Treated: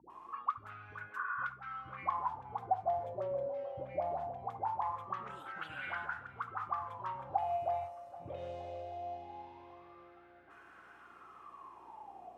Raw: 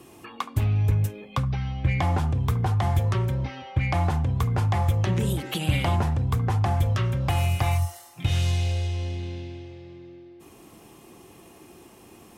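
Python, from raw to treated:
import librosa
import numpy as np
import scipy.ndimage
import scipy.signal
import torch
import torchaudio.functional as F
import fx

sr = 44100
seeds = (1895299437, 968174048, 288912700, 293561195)

y = fx.spec_repair(x, sr, seeds[0], start_s=1.11, length_s=0.23, low_hz=960.0, high_hz=2000.0, source='after')
y = fx.dispersion(y, sr, late='highs', ms=101.0, hz=550.0)
y = fx.add_hum(y, sr, base_hz=60, snr_db=24)
y = fx.wah_lfo(y, sr, hz=0.21, low_hz=560.0, high_hz=1500.0, q=15.0)
y = fx.echo_swing(y, sr, ms=781, ratio=1.5, feedback_pct=36, wet_db=-23.5)
y = fx.band_squash(y, sr, depth_pct=40)
y = y * 10.0 ** (8.0 / 20.0)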